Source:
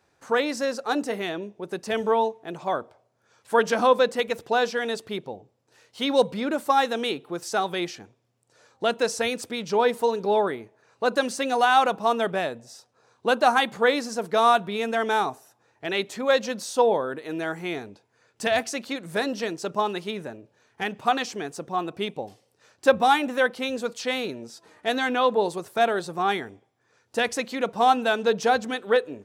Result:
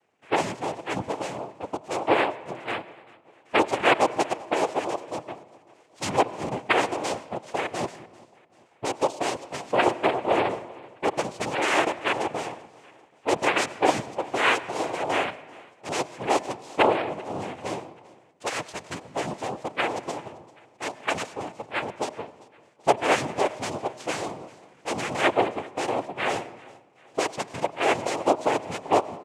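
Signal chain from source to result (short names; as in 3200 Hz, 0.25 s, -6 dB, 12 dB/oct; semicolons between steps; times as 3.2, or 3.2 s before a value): Wiener smoothing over 9 samples; fixed phaser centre 1000 Hz, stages 8; noise vocoder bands 4; feedback echo 0.39 s, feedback 49%, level -23 dB; on a send at -17.5 dB: reverb RT60 1.2 s, pre-delay 84 ms; on the sum: gain +1 dB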